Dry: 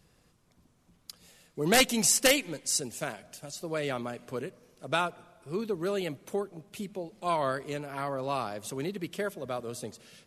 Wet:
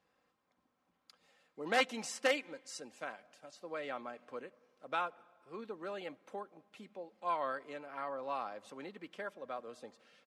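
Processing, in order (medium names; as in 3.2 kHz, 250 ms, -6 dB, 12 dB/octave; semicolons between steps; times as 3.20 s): low-pass 1.1 kHz 12 dB/octave; differentiator; comb 3.8 ms, depth 41%; trim +13.5 dB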